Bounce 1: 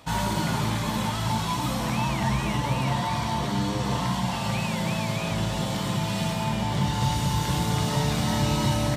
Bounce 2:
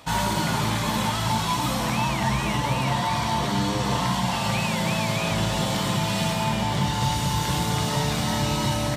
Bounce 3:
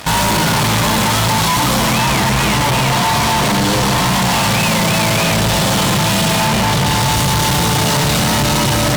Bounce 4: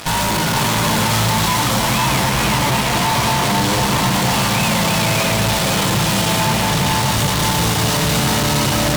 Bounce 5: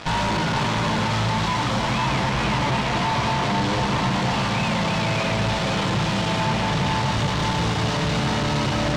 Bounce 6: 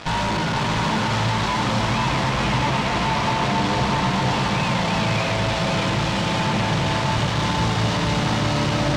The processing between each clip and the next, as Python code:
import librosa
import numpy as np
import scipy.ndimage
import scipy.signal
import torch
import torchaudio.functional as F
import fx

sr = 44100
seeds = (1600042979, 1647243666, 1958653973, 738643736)

y1 = fx.low_shelf(x, sr, hz=440.0, db=-4.0)
y1 = fx.rider(y1, sr, range_db=10, speed_s=0.5)
y1 = F.gain(torch.from_numpy(y1), 4.0).numpy()
y2 = fx.fuzz(y1, sr, gain_db=39.0, gate_db=-47.0)
y3 = fx.tube_stage(y2, sr, drive_db=22.0, bias=0.75)
y3 = y3 + 10.0 ** (-5.0 / 20.0) * np.pad(y3, (int(491 * sr / 1000.0), 0))[:len(y3)]
y3 = F.gain(torch.from_numpy(y3), 5.0).numpy()
y4 = fx.rider(y3, sr, range_db=10, speed_s=0.5)
y4 = fx.air_absorb(y4, sr, metres=130.0)
y4 = F.gain(torch.from_numpy(y4), -4.5).numpy()
y5 = y4 + 10.0 ** (-5.5 / 20.0) * np.pad(y4, (int(634 * sr / 1000.0), 0))[:len(y4)]